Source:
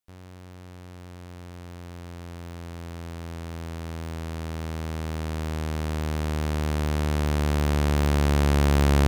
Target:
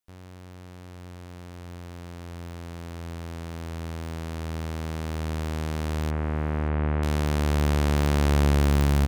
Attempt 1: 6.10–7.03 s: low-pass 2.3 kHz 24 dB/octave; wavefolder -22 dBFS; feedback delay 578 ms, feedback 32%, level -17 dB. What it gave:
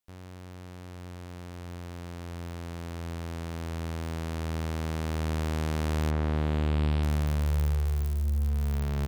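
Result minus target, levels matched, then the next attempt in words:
wavefolder: distortion +20 dB
6.10–7.03 s: low-pass 2.3 kHz 24 dB/octave; wavefolder -16 dBFS; feedback delay 578 ms, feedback 32%, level -17 dB

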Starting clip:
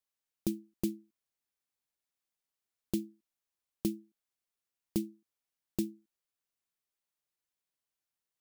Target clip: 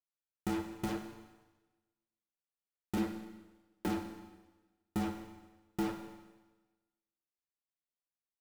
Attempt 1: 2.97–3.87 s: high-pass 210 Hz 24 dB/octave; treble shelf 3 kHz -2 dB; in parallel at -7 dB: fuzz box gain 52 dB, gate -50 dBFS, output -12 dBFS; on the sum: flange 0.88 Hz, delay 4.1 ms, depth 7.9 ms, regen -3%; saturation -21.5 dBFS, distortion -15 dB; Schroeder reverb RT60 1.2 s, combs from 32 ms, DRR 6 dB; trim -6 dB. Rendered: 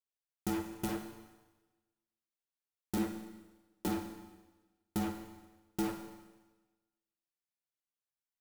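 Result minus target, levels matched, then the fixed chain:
8 kHz band +5.0 dB
2.97–3.87 s: high-pass 210 Hz 24 dB/octave; treble shelf 3 kHz -12.5 dB; in parallel at -7 dB: fuzz box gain 52 dB, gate -50 dBFS, output -12 dBFS; on the sum: flange 0.88 Hz, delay 4.1 ms, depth 7.9 ms, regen -3%; saturation -21.5 dBFS, distortion -15 dB; Schroeder reverb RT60 1.2 s, combs from 32 ms, DRR 6 dB; trim -6 dB

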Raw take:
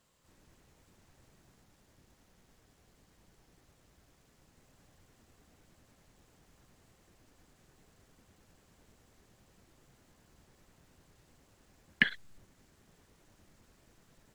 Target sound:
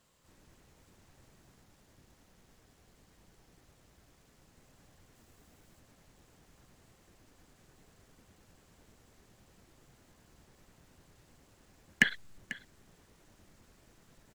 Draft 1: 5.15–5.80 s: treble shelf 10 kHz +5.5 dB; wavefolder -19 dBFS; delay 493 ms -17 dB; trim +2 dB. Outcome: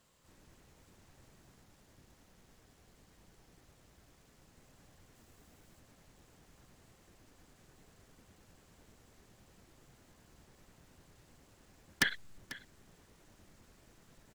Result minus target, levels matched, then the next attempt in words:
wavefolder: distortion +19 dB
5.15–5.80 s: treble shelf 10 kHz +5.5 dB; wavefolder -9 dBFS; delay 493 ms -17 dB; trim +2 dB

